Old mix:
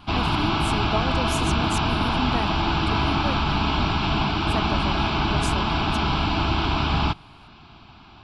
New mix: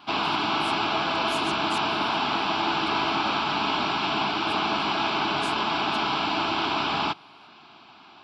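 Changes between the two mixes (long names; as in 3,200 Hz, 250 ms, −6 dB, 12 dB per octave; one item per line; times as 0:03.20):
speech −9.5 dB
master: add high-pass filter 320 Hz 12 dB per octave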